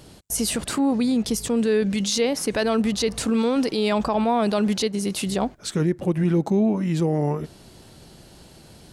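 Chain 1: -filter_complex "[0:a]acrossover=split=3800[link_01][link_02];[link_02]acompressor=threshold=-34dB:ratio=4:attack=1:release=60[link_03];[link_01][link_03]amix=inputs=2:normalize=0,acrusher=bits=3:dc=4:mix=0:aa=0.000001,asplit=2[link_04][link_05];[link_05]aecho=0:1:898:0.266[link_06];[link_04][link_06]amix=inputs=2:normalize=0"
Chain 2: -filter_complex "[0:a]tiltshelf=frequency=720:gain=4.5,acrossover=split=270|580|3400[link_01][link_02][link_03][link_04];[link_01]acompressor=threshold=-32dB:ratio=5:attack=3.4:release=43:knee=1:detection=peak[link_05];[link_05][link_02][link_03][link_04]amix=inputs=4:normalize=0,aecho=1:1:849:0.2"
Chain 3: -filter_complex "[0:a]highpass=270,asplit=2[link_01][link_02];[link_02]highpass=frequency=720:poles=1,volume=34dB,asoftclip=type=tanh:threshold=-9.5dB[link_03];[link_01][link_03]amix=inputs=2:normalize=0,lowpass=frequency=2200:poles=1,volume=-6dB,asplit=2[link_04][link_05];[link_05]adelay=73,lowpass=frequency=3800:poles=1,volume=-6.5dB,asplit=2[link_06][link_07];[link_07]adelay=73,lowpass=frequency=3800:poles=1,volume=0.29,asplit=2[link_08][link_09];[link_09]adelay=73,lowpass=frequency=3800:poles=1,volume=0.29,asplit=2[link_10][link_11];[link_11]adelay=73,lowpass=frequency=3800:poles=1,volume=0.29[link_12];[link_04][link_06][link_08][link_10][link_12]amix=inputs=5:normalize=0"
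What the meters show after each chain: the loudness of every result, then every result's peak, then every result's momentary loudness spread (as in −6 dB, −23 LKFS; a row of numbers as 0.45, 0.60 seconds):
−27.0, −23.5, −17.0 LKFS; −10.5, −10.0, −7.5 dBFS; 12, 11, 12 LU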